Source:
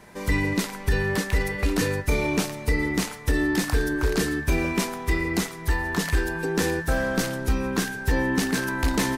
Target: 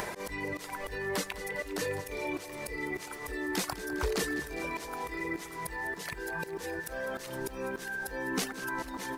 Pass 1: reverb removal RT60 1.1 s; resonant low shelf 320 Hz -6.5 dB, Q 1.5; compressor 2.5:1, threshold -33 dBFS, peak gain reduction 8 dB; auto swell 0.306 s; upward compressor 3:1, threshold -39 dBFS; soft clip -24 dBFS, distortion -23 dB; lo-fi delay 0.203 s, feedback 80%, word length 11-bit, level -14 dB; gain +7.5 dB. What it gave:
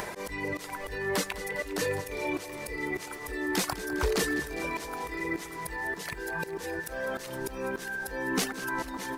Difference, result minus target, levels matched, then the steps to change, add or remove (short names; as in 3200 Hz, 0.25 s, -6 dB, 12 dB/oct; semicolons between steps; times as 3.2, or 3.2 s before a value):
compressor: peak gain reduction -4 dB
change: compressor 2.5:1, threshold -40 dBFS, peak gain reduction 12 dB